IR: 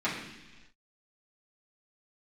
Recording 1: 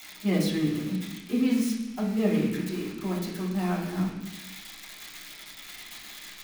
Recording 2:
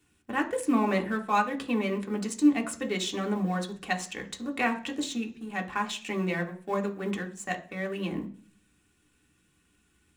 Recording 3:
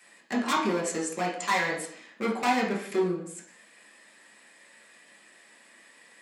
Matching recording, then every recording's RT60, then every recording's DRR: 1; non-exponential decay, 0.45 s, 0.60 s; −10.0, 2.0, −3.5 decibels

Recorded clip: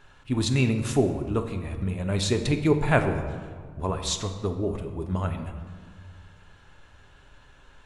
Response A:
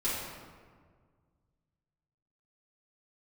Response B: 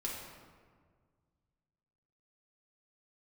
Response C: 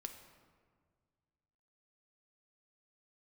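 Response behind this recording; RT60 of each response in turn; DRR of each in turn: C; 1.7, 1.7, 1.8 seconds; −11.5, −4.5, 5.5 decibels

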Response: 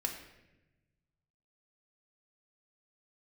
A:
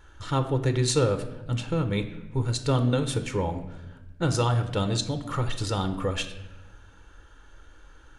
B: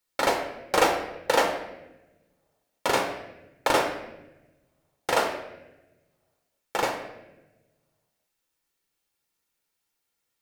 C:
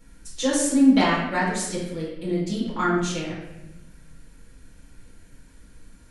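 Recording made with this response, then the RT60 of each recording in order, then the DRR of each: B; 1.0, 1.0, 1.0 seconds; 7.0, 2.5, −7.5 decibels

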